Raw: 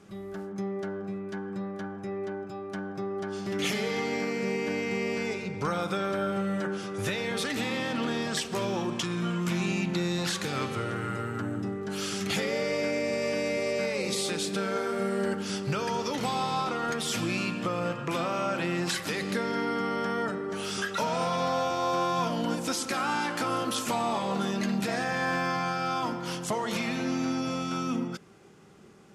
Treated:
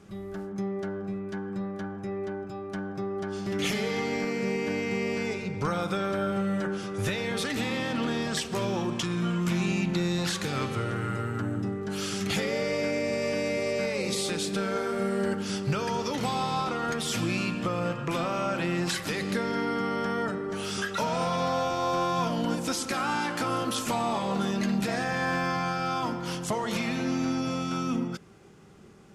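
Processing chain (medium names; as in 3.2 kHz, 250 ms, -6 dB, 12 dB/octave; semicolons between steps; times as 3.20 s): bass shelf 87 Hz +11.5 dB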